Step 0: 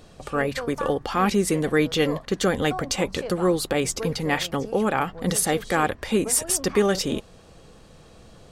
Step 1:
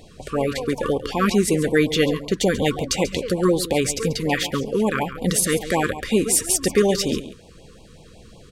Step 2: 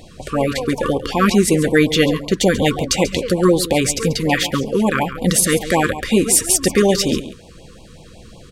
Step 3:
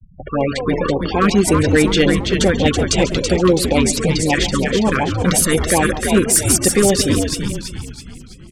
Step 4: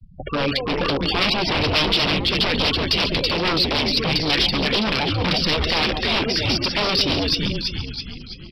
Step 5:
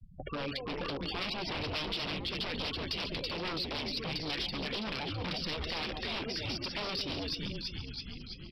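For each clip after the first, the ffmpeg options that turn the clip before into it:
-af "aecho=1:1:138:0.211,afftfilt=real='re*(1-between(b*sr/1024,670*pow(1600/670,0.5+0.5*sin(2*PI*5.4*pts/sr))/1.41,670*pow(1600/670,0.5+0.5*sin(2*PI*5.4*pts/sr))*1.41))':imag='im*(1-between(b*sr/1024,670*pow(1600/670,0.5+0.5*sin(2*PI*5.4*pts/sr))/1.41,670*pow(1600/670,0.5+0.5*sin(2*PI*5.4*pts/sr))*1.41))':win_size=1024:overlap=0.75,volume=3dB"
-af "bandreject=f=430:w=12,volume=5dB"
-filter_complex "[0:a]afftfilt=real='re*gte(hypot(re,im),0.0501)':imag='im*gte(hypot(re,im),0.0501)':win_size=1024:overlap=0.75,asoftclip=type=hard:threshold=-6dB,asplit=2[a][b];[b]asplit=6[c][d][e][f][g][h];[c]adelay=329,afreqshift=-110,volume=-5dB[i];[d]adelay=658,afreqshift=-220,volume=-11.7dB[j];[e]adelay=987,afreqshift=-330,volume=-18.5dB[k];[f]adelay=1316,afreqshift=-440,volume=-25.2dB[l];[g]adelay=1645,afreqshift=-550,volume=-32dB[m];[h]adelay=1974,afreqshift=-660,volume=-38.7dB[n];[i][j][k][l][m][n]amix=inputs=6:normalize=0[o];[a][o]amix=inputs=2:normalize=0"
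-af "aresample=11025,aeval=exprs='0.188*(abs(mod(val(0)/0.188+3,4)-2)-1)':c=same,aresample=44100,alimiter=limit=-16dB:level=0:latency=1:release=374,aexciter=amount=2.7:drive=7.1:freq=2.4k"
-af "acompressor=threshold=-32dB:ratio=2,volume=-8dB"

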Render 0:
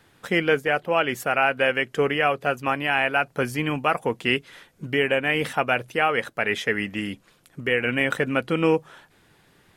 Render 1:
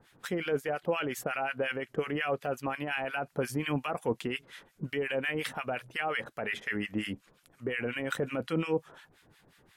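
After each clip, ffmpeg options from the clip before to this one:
-filter_complex "[0:a]alimiter=limit=-16.5dB:level=0:latency=1:release=17,acrossover=split=1100[a][b];[a]aeval=exprs='val(0)*(1-1/2+1/2*cos(2*PI*5.6*n/s))':c=same[c];[b]aeval=exprs='val(0)*(1-1/2-1/2*cos(2*PI*5.6*n/s))':c=same[d];[c][d]amix=inputs=2:normalize=0"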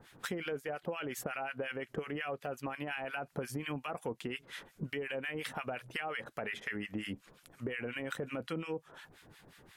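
-af "acompressor=threshold=-39dB:ratio=6,volume=3.5dB"

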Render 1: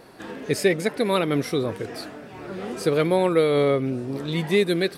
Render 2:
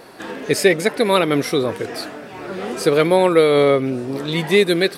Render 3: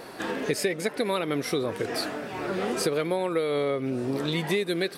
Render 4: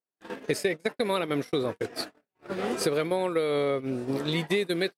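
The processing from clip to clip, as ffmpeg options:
-af "lowshelf=f=210:g=-8.5,volume=7.5dB"
-af "acompressor=threshold=-24dB:ratio=6"
-af "agate=range=-57dB:threshold=-28dB:ratio=16:detection=peak"

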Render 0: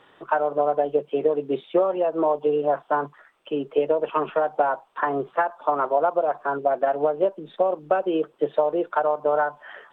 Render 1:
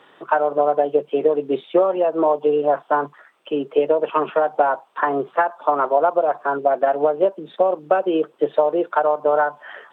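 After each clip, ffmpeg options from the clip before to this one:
-af "highpass=160,volume=4dB"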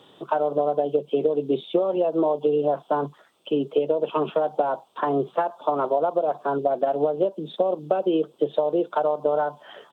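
-af "firequalizer=gain_entry='entry(120,0);entry(280,-6);entry(1800,-21);entry(3400,-3)':delay=0.05:min_phase=1,acompressor=threshold=-26dB:ratio=4,volume=8dB"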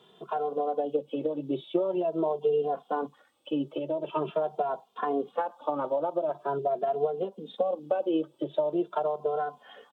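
-filter_complex "[0:a]asplit=2[a][b];[b]adelay=2.5,afreqshift=0.44[c];[a][c]amix=inputs=2:normalize=1,volume=-3dB"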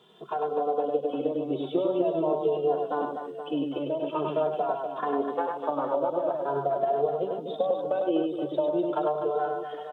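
-af "aecho=1:1:100|250|475|812.5|1319:0.631|0.398|0.251|0.158|0.1"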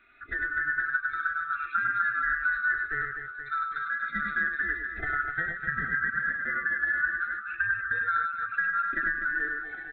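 -af "afftfilt=real='real(if(lt(b,960),b+48*(1-2*mod(floor(b/48),2)),b),0)':imag='imag(if(lt(b,960),b+48*(1-2*mod(floor(b/48),2)),b),0)':win_size=2048:overlap=0.75,aresample=8000,aresample=44100,volume=-2dB"

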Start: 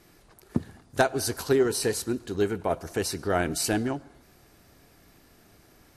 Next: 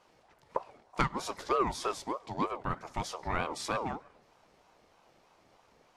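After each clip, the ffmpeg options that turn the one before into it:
-af "lowpass=5.7k,aeval=exprs='val(0)*sin(2*PI*670*n/s+670*0.3/3.2*sin(2*PI*3.2*n/s))':c=same,volume=-4dB"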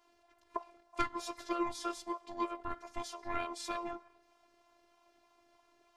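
-af "afftfilt=real='hypot(re,im)*cos(PI*b)':imag='0':win_size=512:overlap=0.75,volume=-1dB"

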